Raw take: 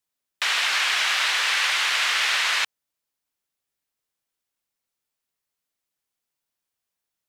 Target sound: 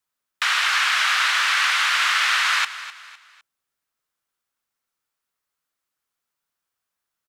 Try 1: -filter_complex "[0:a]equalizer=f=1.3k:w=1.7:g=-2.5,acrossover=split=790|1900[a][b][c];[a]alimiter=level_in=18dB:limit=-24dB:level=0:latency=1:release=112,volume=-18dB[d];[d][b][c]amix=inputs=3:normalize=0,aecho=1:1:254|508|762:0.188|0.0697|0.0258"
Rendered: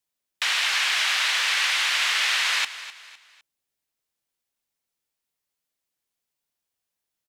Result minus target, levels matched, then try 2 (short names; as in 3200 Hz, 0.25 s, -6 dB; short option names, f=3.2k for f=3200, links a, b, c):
1000 Hz band -5.5 dB
-filter_complex "[0:a]equalizer=f=1.3k:w=1.7:g=8,acrossover=split=790|1900[a][b][c];[a]alimiter=level_in=18dB:limit=-24dB:level=0:latency=1:release=112,volume=-18dB[d];[d][b][c]amix=inputs=3:normalize=0,aecho=1:1:254|508|762:0.188|0.0697|0.0258"